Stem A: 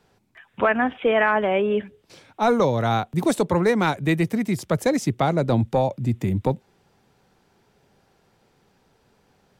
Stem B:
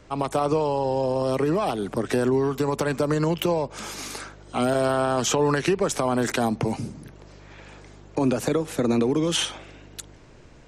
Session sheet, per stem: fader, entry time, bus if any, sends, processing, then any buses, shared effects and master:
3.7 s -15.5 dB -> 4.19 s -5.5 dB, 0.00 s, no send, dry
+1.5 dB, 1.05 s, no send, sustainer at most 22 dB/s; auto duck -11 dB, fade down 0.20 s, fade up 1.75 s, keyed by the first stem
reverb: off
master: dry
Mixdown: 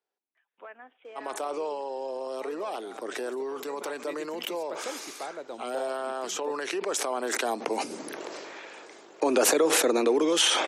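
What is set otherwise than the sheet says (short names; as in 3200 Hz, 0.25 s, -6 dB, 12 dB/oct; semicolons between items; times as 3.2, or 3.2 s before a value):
stem A -15.5 dB -> -25.5 dB; master: extra HPF 340 Hz 24 dB/oct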